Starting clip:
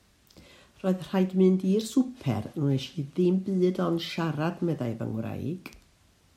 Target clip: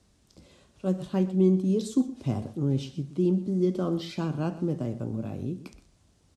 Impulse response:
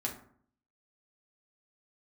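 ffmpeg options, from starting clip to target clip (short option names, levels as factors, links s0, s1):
-af "lowpass=f=10000:w=0.5412,lowpass=f=10000:w=1.3066,equalizer=f=2000:w=0.53:g=-8.5,aecho=1:1:123:0.158"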